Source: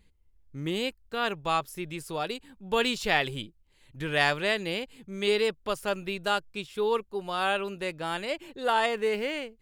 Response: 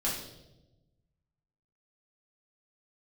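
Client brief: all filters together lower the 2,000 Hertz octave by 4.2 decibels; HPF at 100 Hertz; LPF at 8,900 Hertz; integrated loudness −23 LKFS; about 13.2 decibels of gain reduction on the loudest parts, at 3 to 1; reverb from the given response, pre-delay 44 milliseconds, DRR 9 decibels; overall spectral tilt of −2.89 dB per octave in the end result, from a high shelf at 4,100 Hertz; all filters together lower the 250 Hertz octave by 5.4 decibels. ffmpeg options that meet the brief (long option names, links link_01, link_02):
-filter_complex "[0:a]highpass=100,lowpass=8900,equalizer=frequency=250:width_type=o:gain=-7.5,equalizer=frequency=2000:width_type=o:gain=-3.5,highshelf=frequency=4100:gain=-7.5,acompressor=threshold=-42dB:ratio=3,asplit=2[link_01][link_02];[1:a]atrim=start_sample=2205,adelay=44[link_03];[link_02][link_03]afir=irnorm=-1:irlink=0,volume=-15.5dB[link_04];[link_01][link_04]amix=inputs=2:normalize=0,volume=19.5dB"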